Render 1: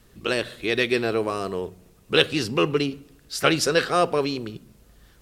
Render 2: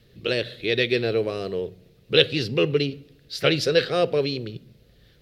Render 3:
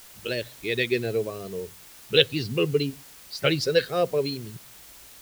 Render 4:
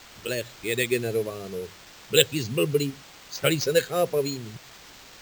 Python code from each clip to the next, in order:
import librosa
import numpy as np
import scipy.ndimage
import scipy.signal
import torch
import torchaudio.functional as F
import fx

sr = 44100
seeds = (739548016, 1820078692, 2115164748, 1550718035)

y1 = fx.graphic_eq(x, sr, hz=(125, 500, 1000, 2000, 4000, 8000), db=(11, 10, -9, 5, 11, -9))
y1 = F.gain(torch.from_numpy(y1), -6.5).numpy()
y2 = fx.bin_expand(y1, sr, power=1.5)
y2 = fx.quant_dither(y2, sr, seeds[0], bits=8, dither='triangular')
y3 = np.repeat(y2[::4], 4)[:len(y2)]